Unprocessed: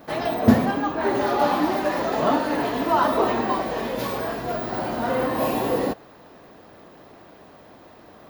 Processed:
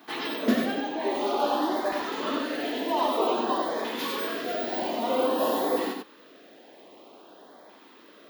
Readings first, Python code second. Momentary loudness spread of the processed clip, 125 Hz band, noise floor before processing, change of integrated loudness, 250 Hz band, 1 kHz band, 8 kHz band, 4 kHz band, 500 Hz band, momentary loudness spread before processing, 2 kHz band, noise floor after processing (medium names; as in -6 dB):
5 LU, under -15 dB, -49 dBFS, -4.5 dB, -6.0 dB, -5.0 dB, -2.0 dB, +1.5 dB, -4.0 dB, 8 LU, -4.5 dB, -53 dBFS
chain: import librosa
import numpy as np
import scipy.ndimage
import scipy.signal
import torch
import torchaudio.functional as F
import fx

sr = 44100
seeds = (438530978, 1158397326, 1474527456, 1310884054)

y = scipy.signal.sosfilt(scipy.signal.butter(4, 250.0, 'highpass', fs=sr, output='sos'), x)
y = fx.peak_eq(y, sr, hz=3300.0, db=6.5, octaves=0.75)
y = fx.rider(y, sr, range_db=10, speed_s=2.0)
y = fx.filter_lfo_notch(y, sr, shape='saw_up', hz=0.52, low_hz=530.0, high_hz=3000.0, q=1.4)
y = y + 10.0 ** (-4.5 / 20.0) * np.pad(y, (int(93 * sr / 1000.0), 0))[:len(y)]
y = F.gain(torch.from_numpy(y), -4.5).numpy()